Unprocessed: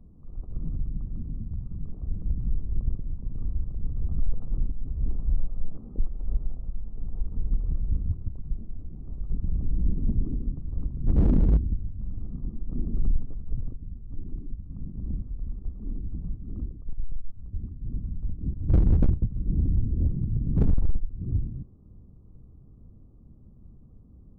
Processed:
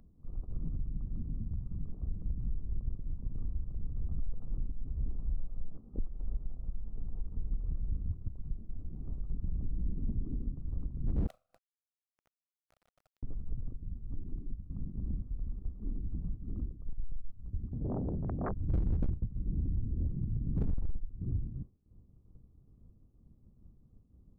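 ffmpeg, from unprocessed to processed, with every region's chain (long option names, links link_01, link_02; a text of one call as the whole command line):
ffmpeg -i in.wav -filter_complex "[0:a]asettb=1/sr,asplit=3[link_01][link_02][link_03];[link_01]atrim=end=11.274[link_04];[link_02]atrim=start=11.27:end=13.23,asetpts=PTS-STARTPTS,afade=type=in:duration=0.004:curve=qsin,afade=type=out:start_time=1.956:duration=0.004:curve=qsin,asuperpass=centerf=630:order=20:qfactor=2.1,aecho=1:1:2.8:0.51,atrim=end_sample=86436,acrusher=bits=7:dc=4:mix=0:aa=0.000001[link_05];[link_03]atrim=start=13.226[link_06];[link_04][link_05]acrossfade=duration=0.004:curve1=hsin:curve2=qsin[link_07];[link_07][link_06]acrossfade=duration=0.004:curve1=qsin:curve2=hsin,asettb=1/sr,asplit=3[link_08][link_09][link_10];[link_08]atrim=end=17.734[link_11];[link_09]atrim=start=17.73:end=18.52,asetpts=PTS-STARTPTS,afade=type=in:duration=0.004:curve=qsin,afade=type=out:start_time=0.786:duration=0.004:curve=qsin,highpass=frequency=370:poles=1,adynamicsmooth=sensitivity=2.5:basefreq=670,aeval=exprs='0.0376*sin(PI/2*7.08*val(0)/0.0376)':channel_layout=same[link_12];[link_10]atrim=start=18.516[link_13];[link_11][link_12]acrossfade=duration=0.004:curve1=hsin:curve2=qsin[link_14];[link_14][link_13]acrossfade=duration=0.004:curve1=qsin:curve2=hsin,acompressor=threshold=-37dB:ratio=3,agate=range=-33dB:threshold=-37dB:ratio=3:detection=peak,acompressor=mode=upward:threshold=-54dB:ratio=2.5,volume=3.5dB" out.wav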